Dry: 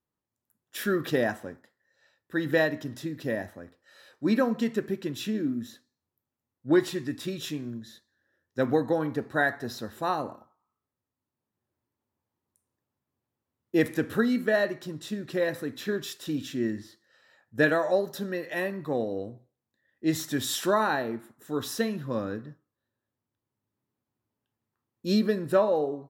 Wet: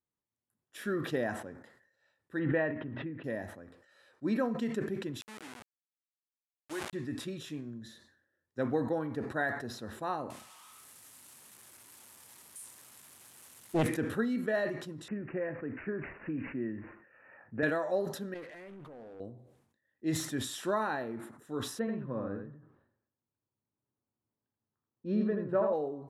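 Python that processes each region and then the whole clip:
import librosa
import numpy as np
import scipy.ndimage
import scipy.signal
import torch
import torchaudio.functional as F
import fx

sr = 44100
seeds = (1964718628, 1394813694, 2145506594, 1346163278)

y = fx.chain(x, sr, fx.steep_lowpass(hz=2800.0, slope=36),
    fx.pre_swell(db_per_s=38.0), at=(2.39, 3.24))
y = fx.chain(y, sr, fx.delta_hold(step_db=-26.0),
    fx.highpass(hz=1400.0, slope=6),
    fx.sustainer(db_per_s=62.0), at=(5.21, 6.93))
y = fx.chain(y, sr, fx.crossing_spikes(level_db=-28.0),
    fx.bass_treble(bass_db=8, treble_db=-1),
    fx.doppler_dist(depth_ms=0.69), at=(10.3, 13.87))
y = fx.chain(y, sr, fx.lowpass(hz=3800.0, slope=6),
    fx.resample_bad(factor=8, down='none', up='filtered'),
    fx.band_squash(depth_pct=70), at=(15.08, 17.63))
y = fx.chain(y, sr, fx.level_steps(step_db=23),
    fx.leveller(passes=2),
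    fx.doppler_dist(depth_ms=0.45), at=(18.34, 19.2))
y = fx.chain(y, sr, fx.lowpass(hz=1700.0, slope=12),
    fx.echo_single(ms=82, db=-5.0), at=(21.79, 25.73))
y = scipy.signal.sosfilt(scipy.signal.butter(4, 11000.0, 'lowpass', fs=sr, output='sos'), y)
y = fx.peak_eq(y, sr, hz=5100.0, db=-6.0, octaves=1.5)
y = fx.sustainer(y, sr, db_per_s=75.0)
y = y * 10.0 ** (-7.0 / 20.0)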